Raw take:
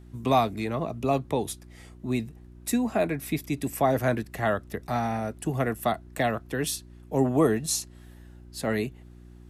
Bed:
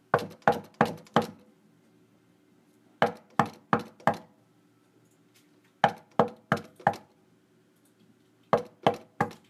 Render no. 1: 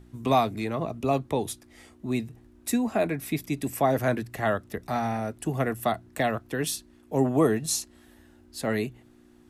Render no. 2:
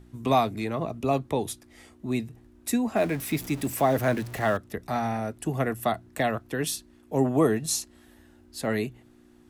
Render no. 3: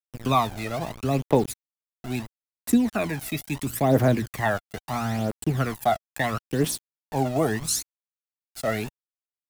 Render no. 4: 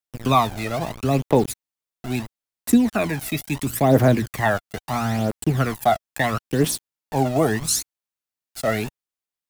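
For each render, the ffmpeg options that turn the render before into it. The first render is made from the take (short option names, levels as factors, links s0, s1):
-af "bandreject=f=60:t=h:w=4,bandreject=f=120:t=h:w=4,bandreject=f=180:t=h:w=4"
-filter_complex "[0:a]asettb=1/sr,asplit=3[s0][s1][s2];[s0]atrim=end=2.964[s3];[s1]atrim=start=2.96:end=4.57,asetpts=PTS-STARTPTS,afade=t=in:d=0.004:c=qsin,afade=t=out:st=1.606:d=0.004:c=qsin,aeval=exprs='val(0)+0.5*0.0141*sgn(val(0))':c=same[s4];[s2]atrim=start=4.566[s5];[s3][s4]acrossfade=d=0.004:c1=hsin:c2=qsin[s6];[s6][s5]acrossfade=d=0.004:c1=qsin:c2=hsin"
-af "aeval=exprs='val(0)*gte(abs(val(0)),0.0188)':c=same,aphaser=in_gain=1:out_gain=1:delay=1.6:decay=0.62:speed=0.75:type=triangular"
-af "volume=1.58,alimiter=limit=0.708:level=0:latency=1"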